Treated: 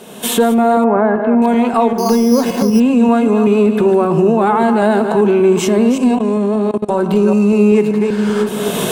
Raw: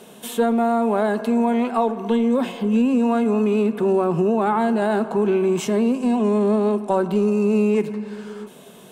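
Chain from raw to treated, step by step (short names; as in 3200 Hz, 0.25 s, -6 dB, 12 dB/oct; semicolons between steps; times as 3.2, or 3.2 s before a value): reverse delay 0.193 s, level -8 dB; recorder AGC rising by 29 dB/s; 0.84–1.42 LPF 2000 Hz 24 dB/oct; 1.98–2.8 careless resampling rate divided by 8×, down filtered, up hold; 6.15–7.02 level quantiser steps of 21 dB; gain +6.5 dB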